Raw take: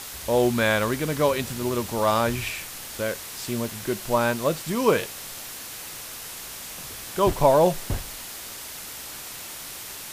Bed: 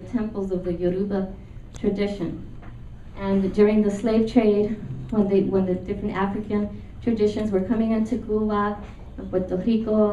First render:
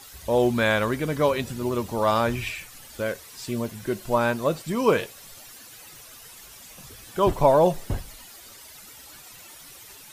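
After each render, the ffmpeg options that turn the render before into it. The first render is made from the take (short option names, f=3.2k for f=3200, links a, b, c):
-af "afftdn=nr=12:nf=-38"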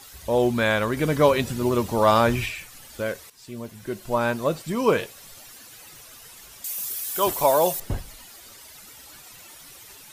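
-filter_complex "[0:a]asettb=1/sr,asplit=3[a][b][c];[a]atrim=end=6.644[d];[b]atrim=start=6.64:end=7.8,asetpts=PTS-STARTPTS,afade=t=in:d=0.004:c=qsin,afade=t=out:st=1.156:d=0.004:c=qsin,aemphasis=mode=production:type=riaa[e];[c]atrim=start=7.796[f];[d][e]acrossfade=d=0.004:c1=hsin:c2=qsin[g];[g][f]acrossfade=d=0.004:c1=qsin:c2=hsin,asplit=4[h][i][j][k];[h]atrim=end=0.972[l];[i]atrim=start=0.968:end=2.462,asetpts=PTS-STARTPTS,volume=4dB[m];[j]atrim=start=2.458:end=3.3,asetpts=PTS-STARTPTS,afade=t=out:st=0.838:d=0.004:c=hsin:silence=0.223872[n];[k]atrim=start=3.3,asetpts=PTS-STARTPTS,afade=t=in:d=1.05:silence=0.223872[o];[l][m]acrossfade=d=0.004:c1=hsin:c2=hsin[p];[n][o]concat=n=2:v=0:a=1[q];[p][q]acrossfade=d=0.004:c1=hsin:c2=hsin"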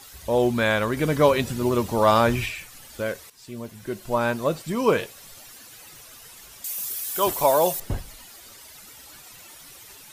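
-af anull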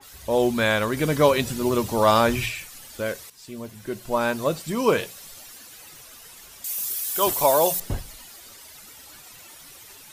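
-af "bandreject=f=60:t=h:w=6,bandreject=f=120:t=h:w=6,bandreject=f=180:t=h:w=6,adynamicequalizer=threshold=0.0112:dfrequency=3000:dqfactor=0.7:tfrequency=3000:tqfactor=0.7:attack=5:release=100:ratio=0.375:range=2:mode=boostabove:tftype=highshelf"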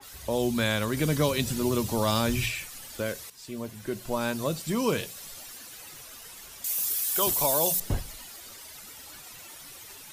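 -filter_complex "[0:a]acrossover=split=260|3000[a][b][c];[b]acompressor=threshold=-31dB:ratio=2.5[d];[a][d][c]amix=inputs=3:normalize=0"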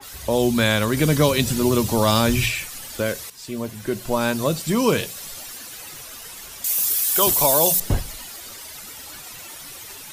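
-af "volume=7.5dB"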